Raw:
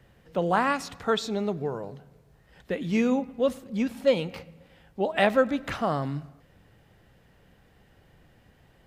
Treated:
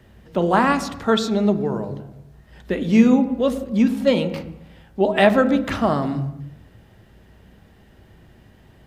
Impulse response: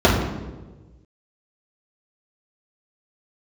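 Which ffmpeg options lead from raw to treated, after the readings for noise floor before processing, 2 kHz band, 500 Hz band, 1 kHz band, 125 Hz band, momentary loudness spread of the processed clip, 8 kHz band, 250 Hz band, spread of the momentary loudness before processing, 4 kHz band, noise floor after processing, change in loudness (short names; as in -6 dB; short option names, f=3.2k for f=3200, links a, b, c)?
-60 dBFS, +5.5 dB, +6.0 dB, +6.0 dB, +8.5 dB, 17 LU, n/a, +10.5 dB, 13 LU, +6.0 dB, -52 dBFS, +7.5 dB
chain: -filter_complex "[0:a]asplit=2[a][b];[1:a]atrim=start_sample=2205,afade=t=out:st=0.39:d=0.01,atrim=end_sample=17640[c];[b][c]afir=irnorm=-1:irlink=0,volume=-33dB[d];[a][d]amix=inputs=2:normalize=0,volume=5.5dB"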